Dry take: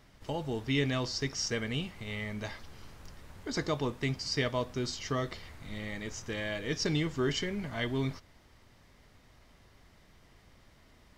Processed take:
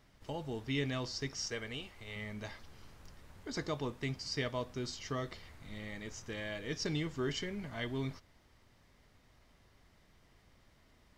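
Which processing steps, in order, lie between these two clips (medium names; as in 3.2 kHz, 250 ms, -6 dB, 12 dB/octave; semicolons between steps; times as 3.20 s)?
1.48–2.16 s: peaking EQ 170 Hz -13 dB 0.8 oct; trim -5.5 dB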